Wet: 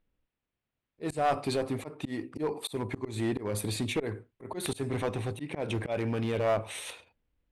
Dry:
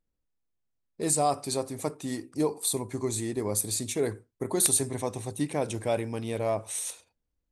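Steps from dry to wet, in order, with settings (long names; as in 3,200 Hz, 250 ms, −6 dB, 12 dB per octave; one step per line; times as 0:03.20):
volume swells 203 ms
high shelf with overshoot 4,300 Hz −14 dB, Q 1.5
in parallel at −1 dB: brickwall limiter −26 dBFS, peak gain reduction 10.5 dB
on the sum: asymmetric clip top −24.5 dBFS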